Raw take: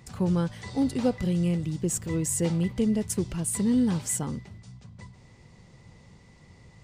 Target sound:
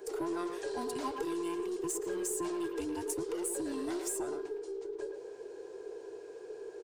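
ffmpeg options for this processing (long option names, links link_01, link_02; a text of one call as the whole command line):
ffmpeg -i in.wav -filter_complex "[0:a]afftfilt=real='real(if(between(b,1,1008),(2*floor((b-1)/24)+1)*24-b,b),0)':imag='imag(if(between(b,1,1008),(2*floor((b-1)/24)+1)*24-b,b),0)*if(between(b,1,1008),-1,1)':win_size=2048:overlap=0.75,lowshelf=frequency=320:width_type=q:width=3:gain=-11.5,asplit=2[link_01][link_02];[link_02]adelay=110,highpass=300,lowpass=3400,asoftclip=type=hard:threshold=-24dB,volume=-8dB[link_03];[link_01][link_03]amix=inputs=2:normalize=0,asplit=2[link_04][link_05];[link_05]asoftclip=type=tanh:threshold=-32.5dB,volume=-3dB[link_06];[link_04][link_06]amix=inputs=2:normalize=0,highpass=89,equalizer=frequency=2900:width=0.38:gain=-9,acrossover=split=560|1200[link_07][link_08][link_09];[link_07]acompressor=threshold=-37dB:ratio=4[link_10];[link_08]acompressor=threshold=-47dB:ratio=4[link_11];[link_09]acompressor=threshold=-36dB:ratio=4[link_12];[link_10][link_11][link_12]amix=inputs=3:normalize=0,aeval=exprs='0.075*(cos(1*acos(clip(val(0)/0.075,-1,1)))-cos(1*PI/2))+0.0075*(cos(2*acos(clip(val(0)/0.075,-1,1)))-cos(2*PI/2))':channel_layout=same" out.wav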